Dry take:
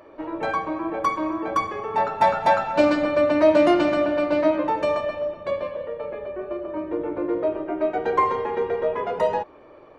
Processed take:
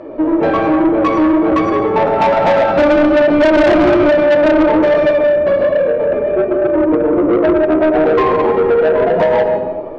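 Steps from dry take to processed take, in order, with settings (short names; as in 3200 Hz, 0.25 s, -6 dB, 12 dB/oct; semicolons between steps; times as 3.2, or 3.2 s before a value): Bessel low-pass 4100 Hz, order 2; resonant low shelf 440 Hz +9.5 dB, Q 1.5; digital reverb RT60 1.1 s, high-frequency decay 0.75×, pre-delay 60 ms, DRR 3 dB; flange 1.2 Hz, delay 5.3 ms, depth 8.2 ms, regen +71%; bell 610 Hz +10.5 dB 0.98 oct; notches 50/100/150/200/250/300/350/400 Hz; in parallel at 0 dB: compressor, threshold -19 dBFS, peak gain reduction 13.5 dB; on the sum: soft clip -13.5 dBFS, distortion -8 dB; gain +6 dB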